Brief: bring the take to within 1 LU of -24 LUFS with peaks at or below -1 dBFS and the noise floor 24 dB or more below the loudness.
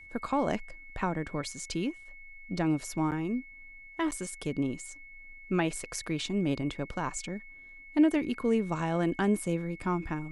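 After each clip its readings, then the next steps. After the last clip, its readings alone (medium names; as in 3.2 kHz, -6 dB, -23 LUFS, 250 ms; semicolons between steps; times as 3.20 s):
dropouts 2; longest dropout 8.5 ms; steady tone 2.2 kHz; tone level -48 dBFS; loudness -31.5 LUFS; peak level -14.5 dBFS; loudness target -24.0 LUFS
-> interpolate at 3.11/4.11 s, 8.5 ms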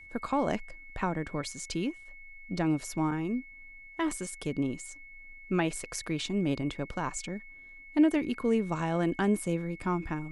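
dropouts 0; steady tone 2.2 kHz; tone level -48 dBFS
-> band-stop 2.2 kHz, Q 30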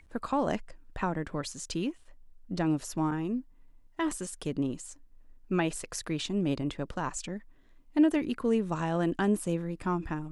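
steady tone not found; loudness -31.5 LUFS; peak level -15.0 dBFS; loudness target -24.0 LUFS
-> trim +7.5 dB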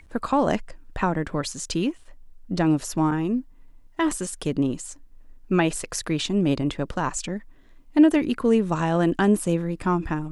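loudness -24.0 LUFS; peak level -7.5 dBFS; noise floor -50 dBFS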